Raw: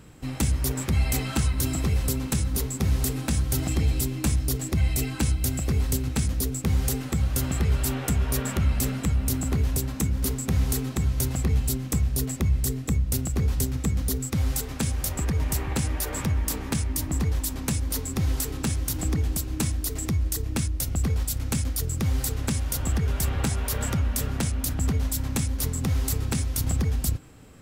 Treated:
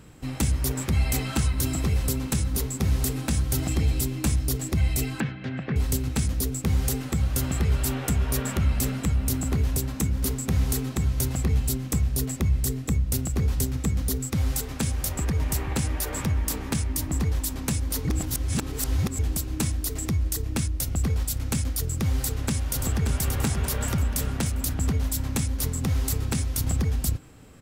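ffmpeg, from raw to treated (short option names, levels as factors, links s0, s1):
-filter_complex "[0:a]asettb=1/sr,asplit=3[s0][s1][s2];[s0]atrim=end=5.204[s3];[s1]atrim=start=5.2:end=5.76,asetpts=PTS-STARTPTS,afade=t=in:d=0.004:c=qsin,afade=t=out:st=0.556:d=0.004:c=qsin,highpass=f=140:w=0.5412,highpass=f=140:w=1.3066,equalizer=f=140:t=q:w=4:g=4,equalizer=f=340:t=q:w=4:g=-3,equalizer=f=1700:t=q:w=4:g=9,lowpass=f=3100:w=0.5412,lowpass=f=3100:w=1.3066[s4];[s2]atrim=start=5.756[s5];[s3][s4]acrossfade=d=0.004:c1=hsin:c2=qsin[s6];[s6][s5]acrossfade=d=0.004:c1=qsin:c2=hsin,asplit=2[s7][s8];[s8]afade=t=in:st=22.16:d=0.01,afade=t=out:st=23.15:d=0.01,aecho=0:1:580|1160|1740|2320|2900|3480:0.501187|0.250594|0.125297|0.0626484|0.0313242|0.0156621[s9];[s7][s9]amix=inputs=2:normalize=0,asplit=3[s10][s11][s12];[s10]atrim=end=18.052[s13];[s11]atrim=start=18.048:end=19.192,asetpts=PTS-STARTPTS,areverse[s14];[s12]atrim=start=19.188[s15];[s13][s14]acrossfade=d=0.004:c1=hsin:c2=hsin[s16];[s16][s15]acrossfade=d=0.004:c1=hsin:c2=hsin"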